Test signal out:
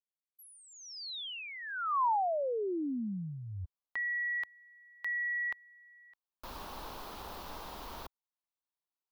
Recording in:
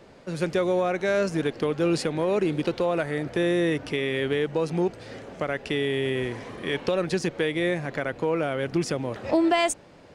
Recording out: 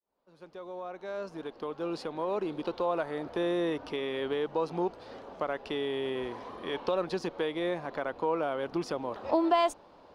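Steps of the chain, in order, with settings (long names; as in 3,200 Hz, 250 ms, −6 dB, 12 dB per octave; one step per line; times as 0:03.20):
fade in at the beginning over 3.30 s
graphic EQ with 10 bands 125 Hz −11 dB, 1,000 Hz +10 dB, 2,000 Hz −8 dB, 4,000 Hz +4 dB, 8,000 Hz −12 dB
level −6 dB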